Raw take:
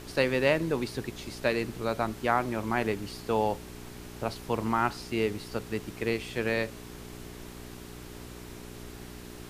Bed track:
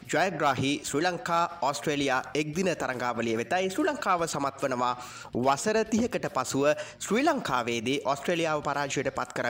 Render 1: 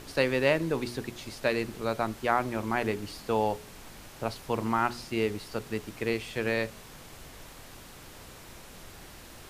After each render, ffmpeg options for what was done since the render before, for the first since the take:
-af "bandreject=f=60:t=h:w=4,bandreject=f=120:t=h:w=4,bandreject=f=180:t=h:w=4,bandreject=f=240:t=h:w=4,bandreject=f=300:t=h:w=4,bandreject=f=360:t=h:w=4,bandreject=f=420:t=h:w=4"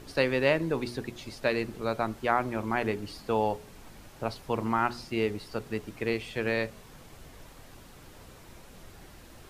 -af "afftdn=nr=6:nf=-48"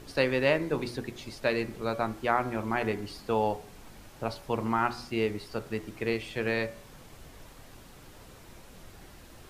-af "bandreject=f=81.41:t=h:w=4,bandreject=f=162.82:t=h:w=4,bandreject=f=244.23:t=h:w=4,bandreject=f=325.64:t=h:w=4,bandreject=f=407.05:t=h:w=4,bandreject=f=488.46:t=h:w=4,bandreject=f=569.87:t=h:w=4,bandreject=f=651.28:t=h:w=4,bandreject=f=732.69:t=h:w=4,bandreject=f=814.1:t=h:w=4,bandreject=f=895.51:t=h:w=4,bandreject=f=976.92:t=h:w=4,bandreject=f=1058.33:t=h:w=4,bandreject=f=1139.74:t=h:w=4,bandreject=f=1221.15:t=h:w=4,bandreject=f=1302.56:t=h:w=4,bandreject=f=1383.97:t=h:w=4,bandreject=f=1465.38:t=h:w=4,bandreject=f=1546.79:t=h:w=4,bandreject=f=1628.2:t=h:w=4,bandreject=f=1709.61:t=h:w=4,bandreject=f=1791.02:t=h:w=4,bandreject=f=1872.43:t=h:w=4,bandreject=f=1953.84:t=h:w=4,bandreject=f=2035.25:t=h:w=4,bandreject=f=2116.66:t=h:w=4,bandreject=f=2198.07:t=h:w=4,bandreject=f=2279.48:t=h:w=4,bandreject=f=2360.89:t=h:w=4,bandreject=f=2442.3:t=h:w=4"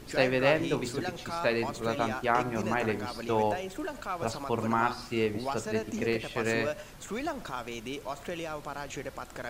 -filter_complex "[1:a]volume=0.335[s0];[0:a][s0]amix=inputs=2:normalize=0"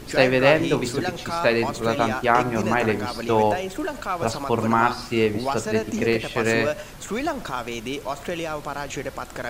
-af "volume=2.51"

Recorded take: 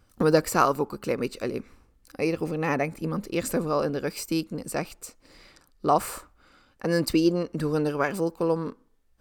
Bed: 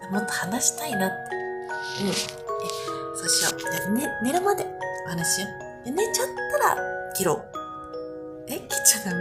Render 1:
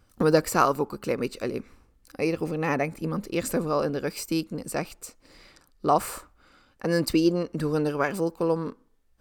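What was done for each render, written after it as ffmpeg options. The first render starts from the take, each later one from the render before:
-af anull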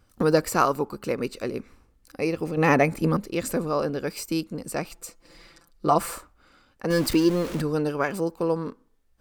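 -filter_complex "[0:a]asettb=1/sr,asplit=3[s0][s1][s2];[s0]atrim=end=2.574[s3];[s1]atrim=start=2.57:end=3.17,asetpts=PTS-STARTPTS,afade=t=in:d=0.004:c=qsin,afade=t=out:st=0.596:d=0.004:c=qsin,acontrast=83[s4];[s2]atrim=start=3.166[s5];[s3][s4]acrossfade=d=0.004:c1=hsin:c2=qsin[s6];[s6][s5]acrossfade=d=0.004:c1=qsin:c2=hsin,asettb=1/sr,asplit=3[s7][s8][s9];[s7]atrim=end=4.904[s10];[s8]atrim=start=4.9:end=6.15,asetpts=PTS-STARTPTS,afade=t=in:d=0.004:c=qsin,afade=t=out:st=1.246:d=0.004:c=qsin,aecho=1:1:5.9:0.65,atrim=end_sample=55125[s11];[s9]atrim=start=6.146[s12];[s10][s11]acrossfade=d=0.004:c1=hsin:c2=qsin[s13];[s13][s12]acrossfade=d=0.004:c1=qsin:c2=hsin,asettb=1/sr,asplit=3[s14][s15][s16];[s14]atrim=end=6.904[s17];[s15]atrim=start=6.9:end=7.62,asetpts=PTS-STARTPTS,afade=t=in:d=0.004:c=qsin,afade=t=out:st=0.716:d=0.004:c=qsin,aeval=exprs='val(0)+0.5*0.0355*sgn(val(0))':c=same[s18];[s16]atrim=start=7.616[s19];[s17][s18]acrossfade=d=0.004:c1=hsin:c2=qsin[s20];[s20][s19]acrossfade=d=0.004:c1=qsin:c2=hsin"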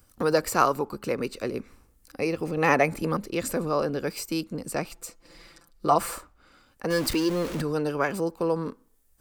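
-filter_complex "[0:a]acrossover=split=420|1100|7500[s0][s1][s2][s3];[s0]alimiter=level_in=1.06:limit=0.0631:level=0:latency=1,volume=0.944[s4];[s3]acompressor=mode=upward:threshold=0.00141:ratio=2.5[s5];[s4][s1][s2][s5]amix=inputs=4:normalize=0"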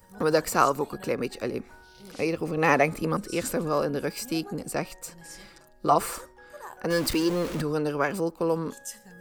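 -filter_complex "[1:a]volume=0.0841[s0];[0:a][s0]amix=inputs=2:normalize=0"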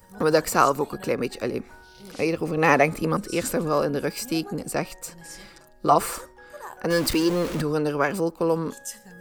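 -af "volume=1.41,alimiter=limit=0.708:level=0:latency=1"

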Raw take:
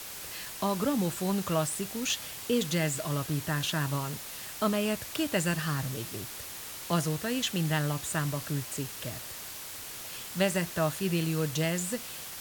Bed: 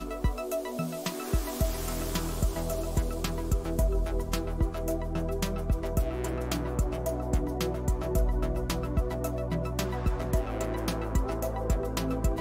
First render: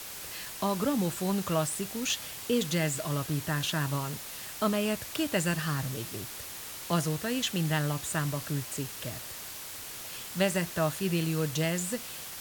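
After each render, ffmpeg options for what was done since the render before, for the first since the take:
-af anull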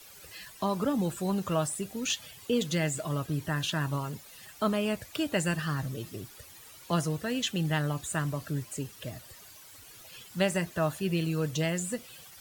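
-af "afftdn=nr=13:nf=-42"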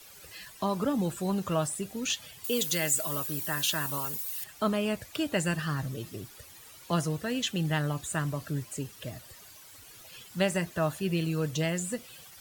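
-filter_complex "[0:a]asettb=1/sr,asplit=3[s0][s1][s2];[s0]atrim=end=2.444[s3];[s1]atrim=start=2.44:end=4.44,asetpts=PTS-STARTPTS,afade=t=in:d=0.004:c=qsin,afade=t=out:st=1.996:d=0.004:c=qsin,aemphasis=mode=production:type=bsi[s4];[s2]atrim=start=4.436[s5];[s3][s4]acrossfade=d=0.004:c1=hsin:c2=qsin[s6];[s6][s5]acrossfade=d=0.004:c1=qsin:c2=hsin"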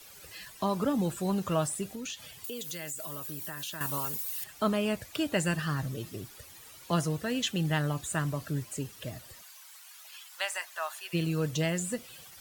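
-filter_complex "[0:a]asettb=1/sr,asplit=3[s0][s1][s2];[s0]atrim=end=1.904[s3];[s1]atrim=start=1.9:end=3.81,asetpts=PTS-STARTPTS,afade=t=in:d=0.004:c=qsin,afade=t=out:st=1.906:d=0.004:c=qsin,acompressor=threshold=0.0178:ratio=6:attack=3.2:release=140:knee=1:detection=peak[s4];[s2]atrim=start=3.806[s5];[s3][s4]acrossfade=d=0.004:c1=hsin:c2=qsin[s6];[s6][s5]acrossfade=d=0.004:c1=qsin:c2=hsin,asplit=3[s7][s8][s9];[s7]afade=t=out:st=9.41:d=0.02[s10];[s8]highpass=f=820:w=0.5412,highpass=f=820:w=1.3066,afade=t=in:st=9.41:d=0.02,afade=t=out:st=11.13:d=0.02[s11];[s9]afade=t=in:st=11.13:d=0.02[s12];[s10][s11][s12]amix=inputs=3:normalize=0"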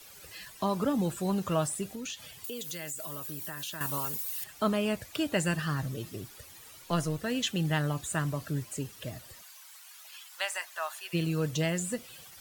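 -filter_complex "[0:a]asettb=1/sr,asplit=3[s0][s1][s2];[s0]atrim=end=6.824[s3];[s1]atrim=start=6.82:end=7.24,asetpts=PTS-STARTPTS,afade=t=in:d=0.004:c=qsin,afade=t=out:st=0.416:d=0.004:c=qsin,aeval=exprs='if(lt(val(0),0),0.708*val(0),val(0))':c=same[s4];[s2]atrim=start=7.236[s5];[s3][s4]acrossfade=d=0.004:c1=hsin:c2=qsin[s6];[s6][s5]acrossfade=d=0.004:c1=qsin:c2=hsin"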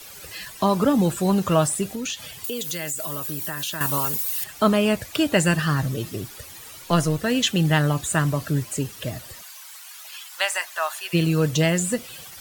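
-af "volume=2.99"

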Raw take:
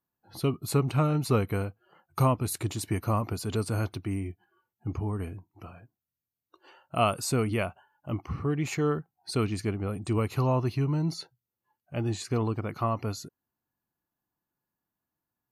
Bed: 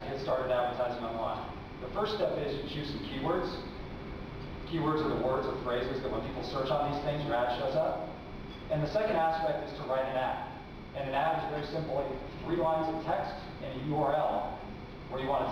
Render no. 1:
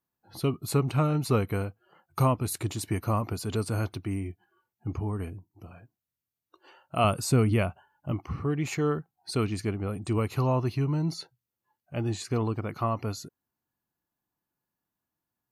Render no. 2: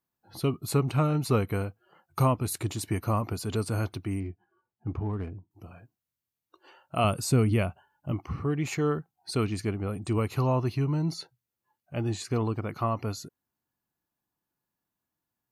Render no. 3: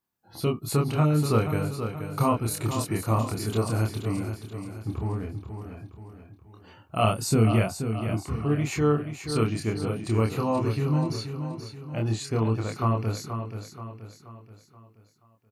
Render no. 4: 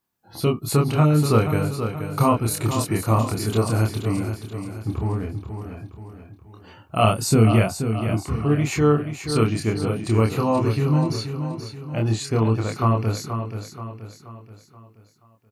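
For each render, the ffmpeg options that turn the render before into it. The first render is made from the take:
-filter_complex "[0:a]asettb=1/sr,asplit=3[s0][s1][s2];[s0]atrim=end=5.304[s3];[s1]atrim=start=5.3:end=5.71,asetpts=PTS-STARTPTS,afade=t=in:d=0.004:c=qsin,afade=t=out:st=0.406:d=0.004:c=qsin,equalizer=f=1700:t=o:w=2.1:g=-12.5[s4];[s2]atrim=start=5.706[s5];[s3][s4]acrossfade=d=0.004:c1=hsin:c2=qsin[s6];[s6][s5]acrossfade=d=0.004:c1=qsin:c2=hsin,asettb=1/sr,asplit=3[s7][s8][s9];[s7]atrim=end=7.044[s10];[s8]atrim=start=7.04:end=8.12,asetpts=PTS-STARTPTS,afade=t=in:d=0.004:c=qsin,afade=t=out:st=1.076:d=0.004:c=qsin,lowshelf=f=240:g=8[s11];[s9]atrim=start=8.116[s12];[s10][s11]acrossfade=d=0.004:c1=hsin:c2=qsin[s13];[s13][s12]acrossfade=d=0.004:c1=qsin:c2=hsin"
-filter_complex "[0:a]asettb=1/sr,asplit=3[s0][s1][s2];[s0]atrim=end=4.204[s3];[s1]atrim=start=4.2:end=5.51,asetpts=PTS-STARTPTS,afade=t=in:d=0.004:c=qsin,afade=t=out:st=1.306:d=0.004:c=qsin,adynamicsmooth=sensitivity=7:basefreq=1800[s4];[s2]atrim=start=5.506[s5];[s3][s4]acrossfade=d=0.004:c1=hsin:c2=qsin[s6];[s6][s5]acrossfade=d=0.004:c1=qsin:c2=hsin,asettb=1/sr,asplit=3[s7][s8][s9];[s7]atrim=end=7.004[s10];[s8]atrim=start=7:end=8.13,asetpts=PTS-STARTPTS,afade=t=in:d=0.004:c=qsin,afade=t=out:st=1.126:d=0.004:c=qsin,equalizer=f=1100:t=o:w=2:g=-2.5[s11];[s9]atrim=start=8.126[s12];[s10][s11]acrossfade=d=0.004:c1=hsin:c2=qsin[s13];[s13][s12]acrossfade=d=0.004:c1=qsin:c2=hsin"
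-filter_complex "[0:a]asplit=2[s0][s1];[s1]adelay=27,volume=0.75[s2];[s0][s2]amix=inputs=2:normalize=0,aecho=1:1:479|958|1437|1916|2395:0.376|0.173|0.0795|0.0366|0.0168"
-af "volume=1.78"

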